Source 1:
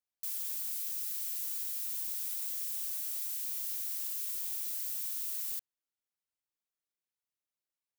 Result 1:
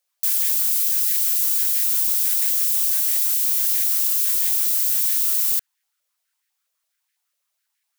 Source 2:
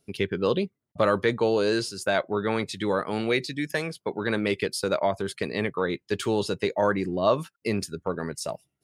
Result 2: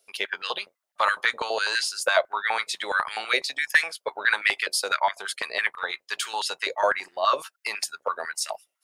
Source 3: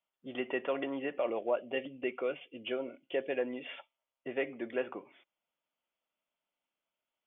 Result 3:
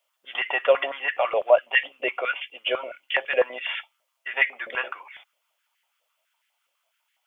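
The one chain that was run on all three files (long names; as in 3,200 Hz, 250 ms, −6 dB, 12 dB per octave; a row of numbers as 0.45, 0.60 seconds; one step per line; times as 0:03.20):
sub-octave generator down 2 octaves, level −2 dB
tilt shelving filter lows −7 dB, about 1,300 Hz
high-pass on a step sequencer 12 Hz 550–1,800 Hz
normalise the peak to −6 dBFS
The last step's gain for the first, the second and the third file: +10.0, 0.0, +9.5 decibels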